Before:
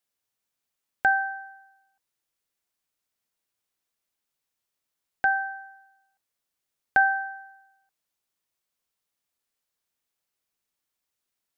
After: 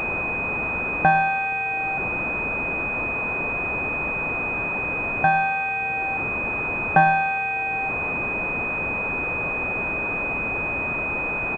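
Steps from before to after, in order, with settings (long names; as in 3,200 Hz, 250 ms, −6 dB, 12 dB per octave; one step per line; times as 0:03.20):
converter with a step at zero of −27.5 dBFS
far-end echo of a speakerphone 100 ms, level −14 dB
switching amplifier with a slow clock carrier 2,500 Hz
level +7 dB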